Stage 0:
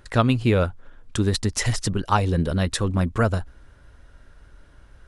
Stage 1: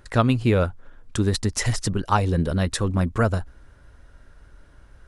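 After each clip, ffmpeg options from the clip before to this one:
-af "equalizer=f=3.2k:w=1.5:g=-2.5"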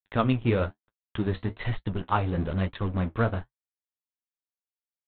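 -af "aresample=8000,aeval=exprs='sgn(val(0))*max(abs(val(0))-0.0211,0)':c=same,aresample=44100,flanger=delay=8.4:depth=9.9:regen=-44:speed=1.1:shape=triangular"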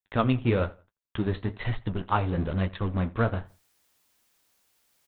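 -filter_complex "[0:a]areverse,acompressor=mode=upward:threshold=-46dB:ratio=2.5,areverse,asplit=2[a][b];[b]adelay=85,lowpass=f=3.2k:p=1,volume=-21.5dB,asplit=2[c][d];[d]adelay=85,lowpass=f=3.2k:p=1,volume=0.31[e];[a][c][e]amix=inputs=3:normalize=0"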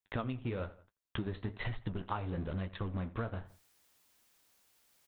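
-af "acompressor=threshold=-32dB:ratio=12,volume=-1dB"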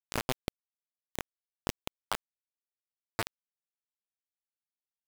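-af "flanger=delay=17.5:depth=7.2:speed=1.2,acrusher=bits=4:mix=0:aa=0.000001,volume=6.5dB"

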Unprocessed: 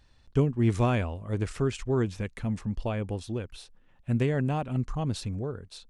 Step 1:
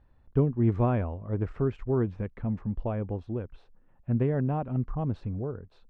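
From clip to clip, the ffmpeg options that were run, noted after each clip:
-af "lowpass=1.2k"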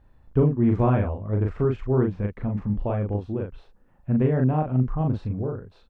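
-filter_complex "[0:a]asplit=2[a][b];[b]adelay=39,volume=-3dB[c];[a][c]amix=inputs=2:normalize=0,volume=3.5dB"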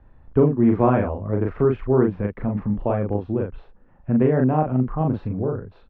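-filter_complex "[0:a]lowpass=2.4k,acrossover=split=180|820[a][b][c];[a]acompressor=threshold=-33dB:ratio=6[d];[d][b][c]amix=inputs=3:normalize=0,volume=5.5dB"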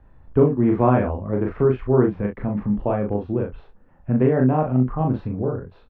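-filter_complex "[0:a]asplit=2[a][b];[b]adelay=24,volume=-8.5dB[c];[a][c]amix=inputs=2:normalize=0"

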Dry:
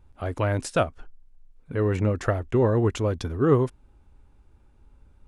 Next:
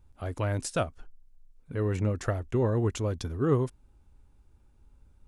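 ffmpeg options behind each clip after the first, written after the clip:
-af "bass=f=250:g=3,treble=f=4k:g=7,volume=-6.5dB"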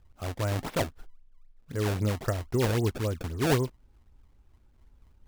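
-af "acrusher=samples=25:mix=1:aa=0.000001:lfo=1:lforange=40:lforate=3.8"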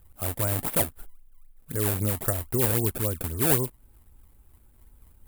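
-filter_complex "[0:a]asplit=2[a][b];[b]acompressor=threshold=-34dB:ratio=6,volume=1dB[c];[a][c]amix=inputs=2:normalize=0,aexciter=amount=8.7:drive=3.8:freq=8.2k,volume=-3dB"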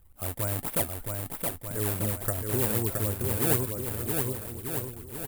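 -af "aecho=1:1:670|1240|1724|2135|2485:0.631|0.398|0.251|0.158|0.1,volume=-3.5dB"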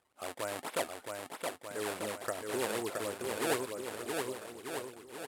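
-af "highpass=410,lowpass=6.2k"

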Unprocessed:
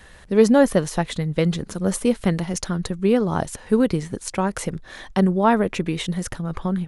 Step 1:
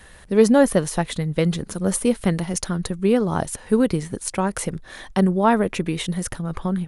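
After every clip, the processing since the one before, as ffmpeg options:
-af "equalizer=f=9.7k:w=3.2:g=7.5"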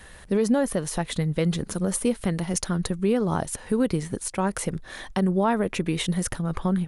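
-af "alimiter=limit=-13.5dB:level=0:latency=1:release=209"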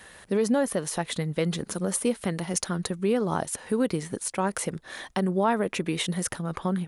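-af "highpass=f=230:p=1"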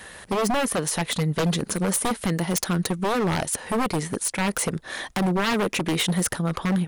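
-af "aeval=exprs='0.0668*(abs(mod(val(0)/0.0668+3,4)-2)-1)':c=same,volume=6.5dB"

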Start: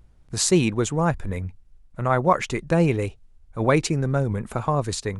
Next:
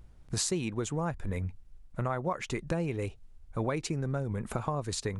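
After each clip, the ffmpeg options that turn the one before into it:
-af "acompressor=threshold=-29dB:ratio=6"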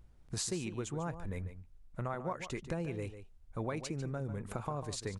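-filter_complex "[0:a]asplit=2[a][b];[b]adelay=145.8,volume=-11dB,highshelf=f=4k:g=-3.28[c];[a][c]amix=inputs=2:normalize=0,volume=-6dB"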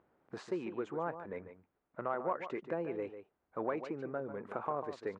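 -af "asoftclip=type=tanh:threshold=-27.5dB,asuperpass=centerf=730:order=4:qfactor=0.53,volume=5dB"

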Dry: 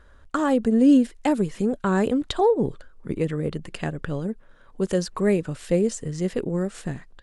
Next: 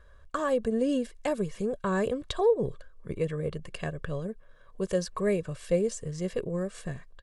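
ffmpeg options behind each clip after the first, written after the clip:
-af "aecho=1:1:1.8:0.59,volume=-6dB"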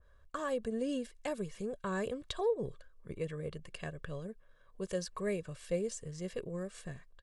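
-af "adynamicequalizer=threshold=0.00708:dfrequency=1500:dqfactor=0.7:tfrequency=1500:tqfactor=0.7:attack=5:release=100:ratio=0.375:range=2:mode=boostabove:tftype=highshelf,volume=-8.5dB"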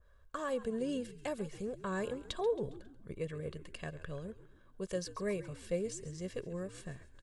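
-filter_complex "[0:a]asplit=5[a][b][c][d][e];[b]adelay=136,afreqshift=-65,volume=-15.5dB[f];[c]adelay=272,afreqshift=-130,volume=-21.9dB[g];[d]adelay=408,afreqshift=-195,volume=-28.3dB[h];[e]adelay=544,afreqshift=-260,volume=-34.6dB[i];[a][f][g][h][i]amix=inputs=5:normalize=0,volume=-1dB"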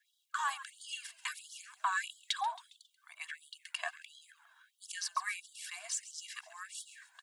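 -af "aphaser=in_gain=1:out_gain=1:delay=2.1:decay=0.4:speed=1.2:type=sinusoidal,afftfilt=real='re*gte(b*sr/1024,630*pow(3000/630,0.5+0.5*sin(2*PI*1.5*pts/sr)))':imag='im*gte(b*sr/1024,630*pow(3000/630,0.5+0.5*sin(2*PI*1.5*pts/sr)))':win_size=1024:overlap=0.75,volume=8.5dB"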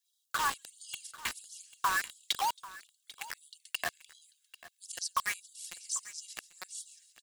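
-filter_complex "[0:a]acrossover=split=3800[a][b];[a]acrusher=bits=5:mix=0:aa=0.000001[c];[c][b]amix=inputs=2:normalize=0,aecho=1:1:792:0.126,volume=3dB"

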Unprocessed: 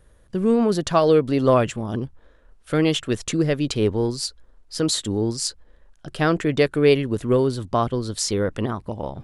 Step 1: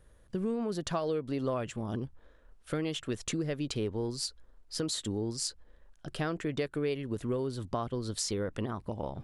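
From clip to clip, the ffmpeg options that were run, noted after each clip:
-af "acompressor=threshold=-25dB:ratio=4,volume=-5.5dB"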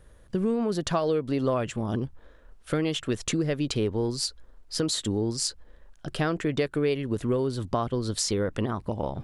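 -af "highshelf=f=10k:g=-3,volume=6.5dB"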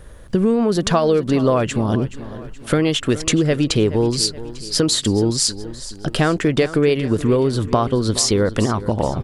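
-filter_complex "[0:a]asplit=2[a][b];[b]acompressor=threshold=-32dB:ratio=6,volume=1dB[c];[a][c]amix=inputs=2:normalize=0,aecho=1:1:424|848|1272|1696:0.168|0.0789|0.0371|0.0174,volume=6.5dB"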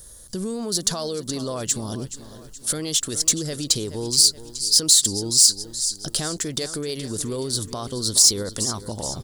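-af "alimiter=limit=-10.5dB:level=0:latency=1:release=26,aexciter=amount=5.9:drive=9.5:freq=3.9k,volume=-10.5dB"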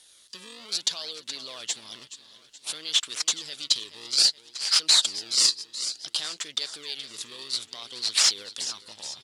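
-filter_complex "[0:a]asplit=2[a][b];[b]acrusher=samples=34:mix=1:aa=0.000001:lfo=1:lforange=54.4:lforate=0.58,volume=-7.5dB[c];[a][c]amix=inputs=2:normalize=0,bandpass=f=3.4k:t=q:w=2.3:csg=0,volume=3.5dB"

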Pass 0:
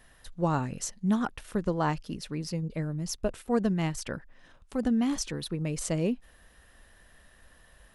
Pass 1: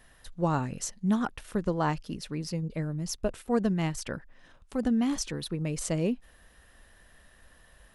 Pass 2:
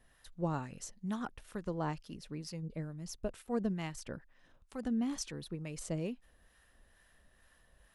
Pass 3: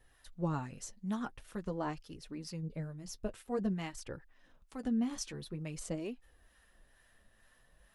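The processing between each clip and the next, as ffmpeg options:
-af anull
-filter_complex "[0:a]acrossover=split=730[a][b];[a]aeval=exprs='val(0)*(1-0.5/2+0.5/2*cos(2*PI*2.2*n/s))':c=same[c];[b]aeval=exprs='val(0)*(1-0.5/2-0.5/2*cos(2*PI*2.2*n/s))':c=same[d];[c][d]amix=inputs=2:normalize=0,volume=-6.5dB"
-af "flanger=delay=2.3:depth=6.9:regen=-32:speed=0.48:shape=sinusoidal,volume=3.5dB"

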